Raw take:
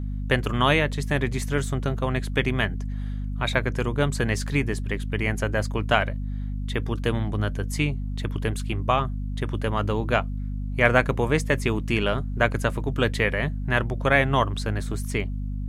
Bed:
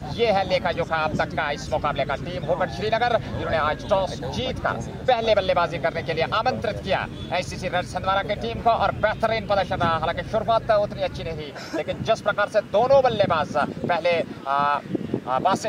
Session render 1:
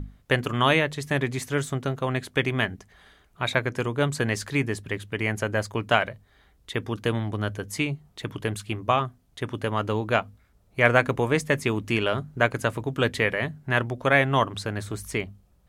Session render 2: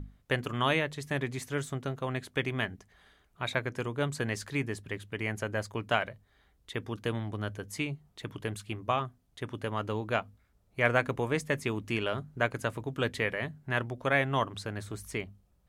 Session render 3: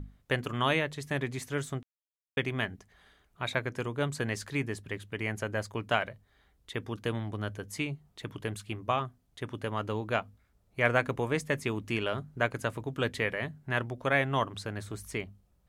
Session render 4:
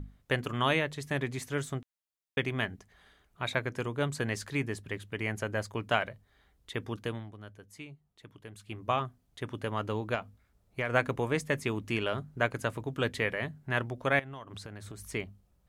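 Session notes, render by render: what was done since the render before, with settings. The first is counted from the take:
notches 50/100/150/200/250 Hz
gain -7 dB
1.83–2.37 mute
6.93–8.93 dip -12.5 dB, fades 0.41 s; 10.14–10.94 compressor, threshold -27 dBFS; 14.19–15.09 compressor 16:1, threshold -39 dBFS

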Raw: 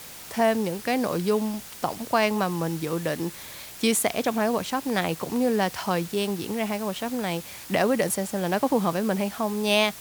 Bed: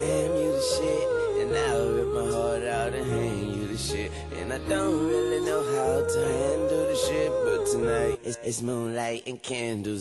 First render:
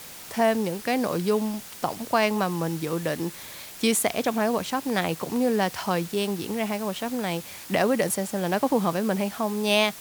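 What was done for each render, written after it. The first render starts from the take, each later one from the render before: de-hum 60 Hz, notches 2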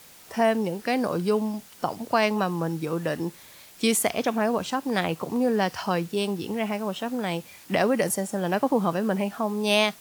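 noise print and reduce 8 dB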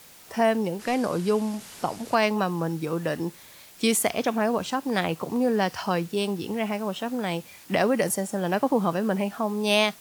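0.79–2.15 delta modulation 64 kbps, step -36.5 dBFS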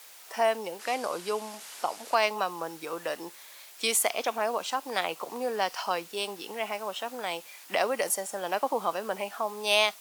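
dynamic EQ 1700 Hz, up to -5 dB, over -44 dBFS, Q 3.9; HPF 630 Hz 12 dB/oct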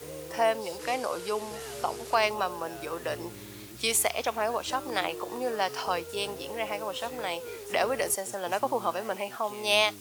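add bed -16 dB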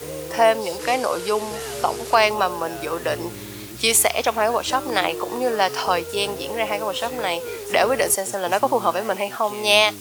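gain +9 dB; limiter -3 dBFS, peak gain reduction 2 dB

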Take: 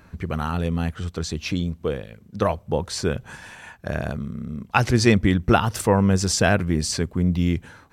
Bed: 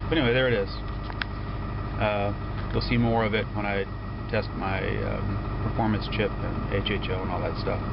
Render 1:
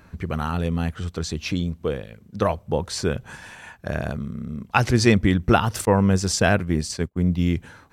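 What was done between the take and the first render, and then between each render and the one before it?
5.85–7.4 expander -22 dBFS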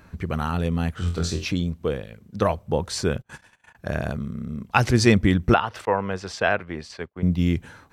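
0.95–1.45 flutter echo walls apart 4 m, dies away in 0.33 s; 3.18–3.75 gate -40 dBFS, range -31 dB; 5.54–7.23 three-band isolator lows -14 dB, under 440 Hz, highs -21 dB, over 3800 Hz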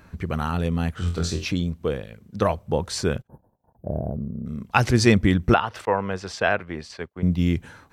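3.27–4.46 inverse Chebyshev band-stop 2300–6400 Hz, stop band 70 dB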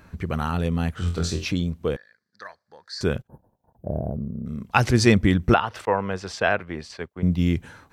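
1.96–3.01 double band-pass 2800 Hz, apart 1.4 oct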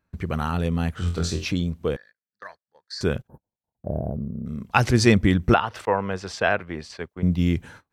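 gate -44 dBFS, range -25 dB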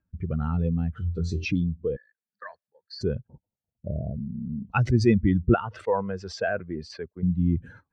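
spectral contrast raised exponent 1.8; rotary speaker horn 1.1 Hz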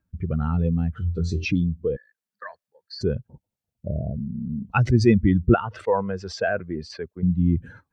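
gain +3 dB

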